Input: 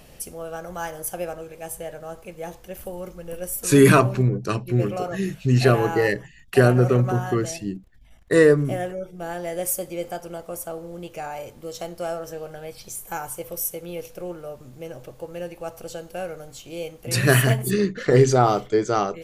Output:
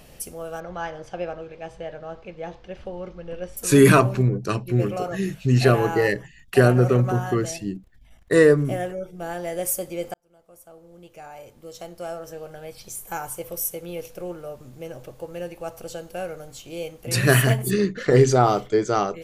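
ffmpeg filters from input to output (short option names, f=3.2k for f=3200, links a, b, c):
-filter_complex "[0:a]asettb=1/sr,asplit=3[a][b][c];[a]atrim=end=0.604[d];[b]atrim=start=0.6:end=3.57,asetpts=PTS-STARTPTS,afade=t=in:d=0.004:c=qsin,afade=t=out:st=2.966:d=0.004:c=qsin,lowpass=f=4.6k:w=0.5412,lowpass=f=4.6k:w=1.3066[e];[c]atrim=start=3.566[f];[d][e]acrossfade=d=0.004:c1=hsin:c2=qsin[g];[g][f]acrossfade=d=0.004:c1=qsin:c2=hsin,asplit=2[h][i];[h]atrim=end=10.14,asetpts=PTS-STARTPTS,afade=t=out:st=10.136:d=0.004:c=hsin[j];[i]atrim=start=10.14,asetpts=PTS-STARTPTS,afade=t=in:d=3.08[k];[j][k]concat=n=2:v=0:a=1"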